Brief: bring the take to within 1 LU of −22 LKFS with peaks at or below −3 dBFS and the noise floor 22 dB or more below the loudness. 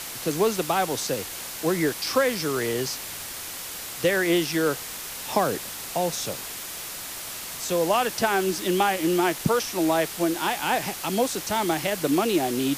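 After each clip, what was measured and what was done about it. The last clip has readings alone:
background noise floor −36 dBFS; target noise floor −48 dBFS; integrated loudness −25.5 LKFS; sample peak −7.5 dBFS; target loudness −22.0 LKFS
→ broadband denoise 12 dB, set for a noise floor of −36 dBFS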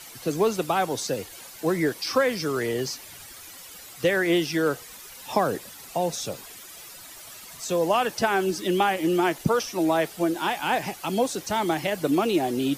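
background noise floor −44 dBFS; target noise floor −48 dBFS
→ broadband denoise 6 dB, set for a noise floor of −44 dBFS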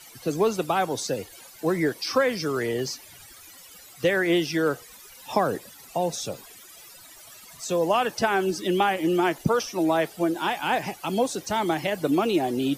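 background noise floor −48 dBFS; integrated loudness −25.5 LKFS; sample peak −7.5 dBFS; target loudness −22.0 LKFS
→ level +3.5 dB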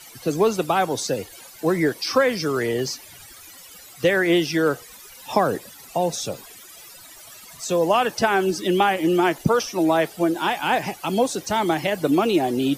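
integrated loudness −22.0 LKFS; sample peak −4.0 dBFS; background noise floor −44 dBFS

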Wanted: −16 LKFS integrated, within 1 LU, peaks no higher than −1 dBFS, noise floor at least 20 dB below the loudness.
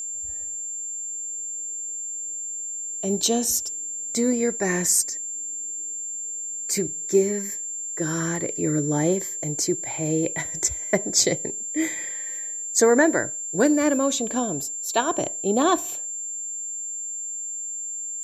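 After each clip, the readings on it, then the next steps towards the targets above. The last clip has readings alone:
interfering tone 7,300 Hz; level of the tone −29 dBFS; integrated loudness −24.0 LKFS; sample peak −5.0 dBFS; target loudness −16.0 LKFS
→ notch filter 7,300 Hz, Q 30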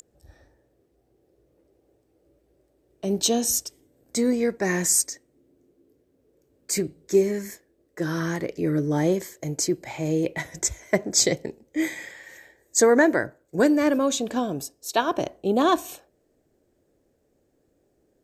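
interfering tone none found; integrated loudness −24.0 LKFS; sample peak −5.0 dBFS; target loudness −16.0 LKFS
→ level +8 dB
brickwall limiter −1 dBFS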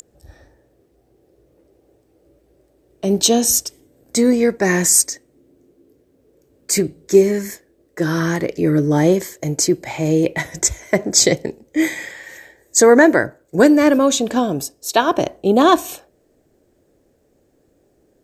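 integrated loudness −16.5 LKFS; sample peak −1.0 dBFS; background noise floor −60 dBFS

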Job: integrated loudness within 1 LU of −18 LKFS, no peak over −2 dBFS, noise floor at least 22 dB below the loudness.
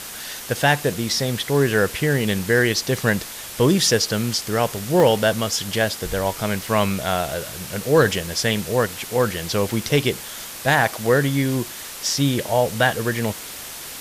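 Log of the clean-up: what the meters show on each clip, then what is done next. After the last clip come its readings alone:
number of dropouts 3; longest dropout 1.5 ms; background noise floor −35 dBFS; target noise floor −43 dBFS; integrated loudness −21.0 LKFS; sample peak −5.0 dBFS; target loudness −18.0 LKFS
→ repair the gap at 0:05.00/0:10.36/0:11.07, 1.5 ms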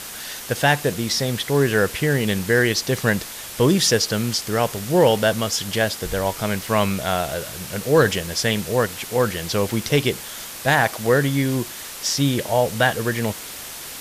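number of dropouts 0; background noise floor −35 dBFS; target noise floor −43 dBFS
→ noise reduction from a noise print 8 dB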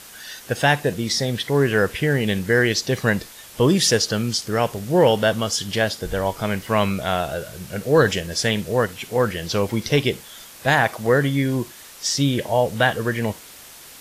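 background noise floor −43 dBFS; integrated loudness −21.0 LKFS; sample peak −5.5 dBFS; target loudness −18.0 LKFS
→ level +3 dB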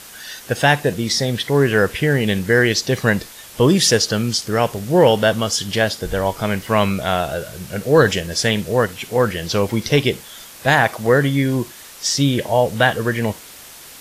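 integrated loudness −18.0 LKFS; sample peak −2.5 dBFS; background noise floor −40 dBFS

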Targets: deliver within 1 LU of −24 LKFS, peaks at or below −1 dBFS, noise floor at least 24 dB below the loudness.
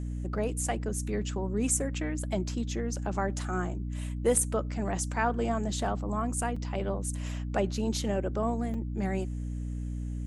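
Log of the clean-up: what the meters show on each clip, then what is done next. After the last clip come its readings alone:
number of dropouts 2; longest dropout 4.5 ms; mains hum 60 Hz; hum harmonics up to 300 Hz; level of the hum −32 dBFS; integrated loudness −31.5 LKFS; sample peak −10.5 dBFS; target loudness −24.0 LKFS
→ repair the gap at 0:06.56/0:08.74, 4.5 ms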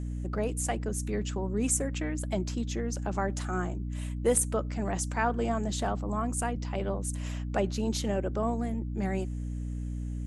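number of dropouts 0; mains hum 60 Hz; hum harmonics up to 300 Hz; level of the hum −32 dBFS
→ mains-hum notches 60/120/180/240/300 Hz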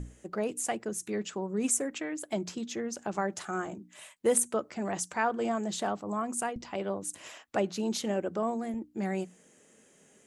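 mains hum none found; integrated loudness −32.5 LKFS; sample peak −11.0 dBFS; target loudness −24.0 LKFS
→ level +8.5 dB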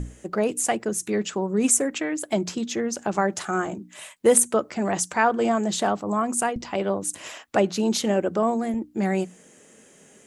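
integrated loudness −24.0 LKFS; sample peak −2.5 dBFS; background noise floor −53 dBFS

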